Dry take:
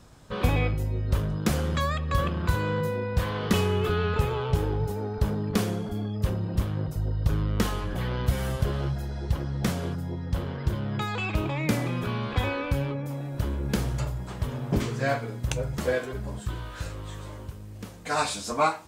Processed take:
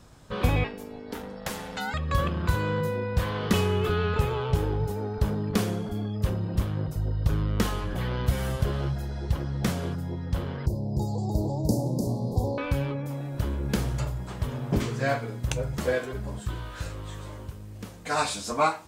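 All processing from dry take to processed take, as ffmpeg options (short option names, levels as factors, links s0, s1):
-filter_complex "[0:a]asettb=1/sr,asplit=3[s0][s1][s2];[s0]atrim=end=0.644[s3];[s1]atrim=start=0.64:end=1.94,asetpts=PTS-STARTPTS,afade=t=in:d=0.004:c=qsin,afade=t=out:st=1.296:d=0.004:c=qsin,lowshelf=f=360:g=-11,aecho=1:1:7:0.38,atrim=end_sample=57330,aeval=exprs='val(0)*sin(2*PI*350*n/s)':c=same[s4];[s2]atrim=start=1.936[s5];[s3][s4]acrossfade=d=0.004:c1=hsin:c2=qsin[s6];[s6][s5]acrossfade=d=0.004:c1=qsin:c2=hsin,asettb=1/sr,asplit=3[s7][s8][s9];[s7]atrim=end=10.664[s10];[s8]atrim=start=10.66:end=12.58,asetpts=PTS-STARTPTS,afade=t=in:d=0.004:c=qsin,afade=t=out:st=1.916:d=0.004:c=qsin,asuperstop=centerf=2000:order=12:qfactor=0.54,aecho=1:1:298:0.596,atrim=end_sample=84672[s11];[s9]atrim=start=12.576[s12];[s10][s11]acrossfade=d=0.004:c1=hsin:c2=qsin[s13];[s13][s12]acrossfade=d=0.004:c1=qsin:c2=hsin"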